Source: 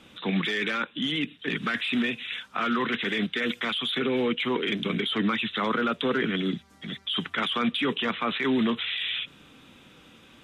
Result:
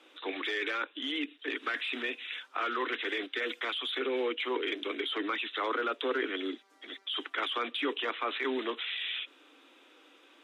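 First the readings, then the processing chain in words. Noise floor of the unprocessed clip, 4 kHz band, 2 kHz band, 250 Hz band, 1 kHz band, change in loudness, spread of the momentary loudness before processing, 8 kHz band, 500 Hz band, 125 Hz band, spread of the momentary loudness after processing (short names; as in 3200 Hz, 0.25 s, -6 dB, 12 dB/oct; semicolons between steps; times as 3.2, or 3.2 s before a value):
-54 dBFS, -6.0 dB, -5.0 dB, -11.5 dB, -4.5 dB, -6.0 dB, 4 LU, n/a, -4.0 dB, under -35 dB, 5 LU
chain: steep high-pass 280 Hz 72 dB/oct; high shelf 5100 Hz -6.5 dB; gain -4 dB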